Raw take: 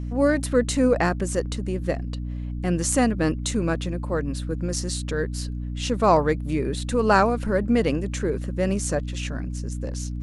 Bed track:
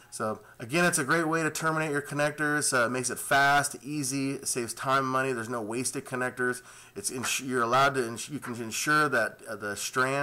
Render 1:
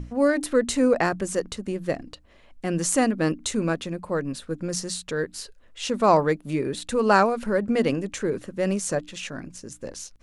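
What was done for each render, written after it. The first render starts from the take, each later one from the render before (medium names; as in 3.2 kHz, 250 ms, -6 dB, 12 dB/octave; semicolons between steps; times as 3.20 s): hum notches 60/120/180/240/300 Hz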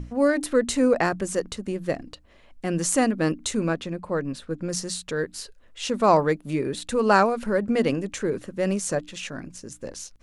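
3.68–4.68 s: treble shelf 7.9 kHz -10 dB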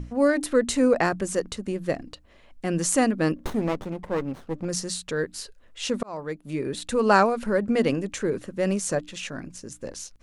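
3.36–4.65 s: sliding maximum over 17 samples; 6.03–6.82 s: fade in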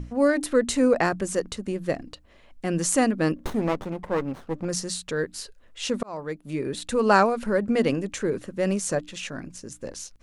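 3.59–4.74 s: peaking EQ 1.1 kHz +3 dB 2 oct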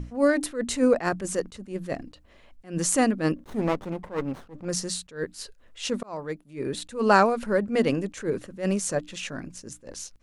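attacks held to a fixed rise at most 200 dB/s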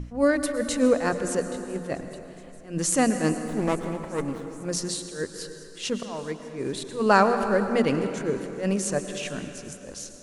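feedback echo behind a high-pass 420 ms, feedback 77%, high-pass 5 kHz, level -20 dB; plate-style reverb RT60 3.1 s, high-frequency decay 0.6×, pre-delay 95 ms, DRR 8 dB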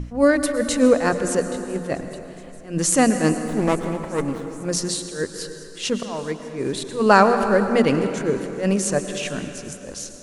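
trim +5 dB; peak limiter -1 dBFS, peak gain reduction 0.5 dB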